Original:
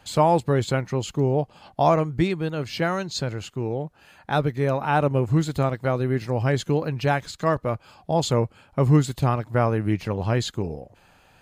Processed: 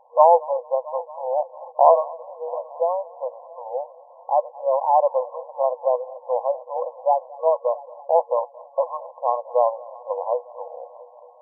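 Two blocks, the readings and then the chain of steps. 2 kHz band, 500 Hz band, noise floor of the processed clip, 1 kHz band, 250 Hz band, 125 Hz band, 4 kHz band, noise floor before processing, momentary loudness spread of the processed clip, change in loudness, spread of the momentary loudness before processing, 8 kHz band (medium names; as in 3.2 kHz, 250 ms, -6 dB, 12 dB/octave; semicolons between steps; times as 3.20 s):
under -40 dB, +4.0 dB, -49 dBFS, +5.5 dB, under -40 dB, under -40 dB, under -40 dB, -57 dBFS, 16 LU, +1.0 dB, 9 LU, under -40 dB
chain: FFT band-pass 480–1100 Hz; multi-head delay 224 ms, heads first and third, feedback 59%, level -22 dB; trim +6 dB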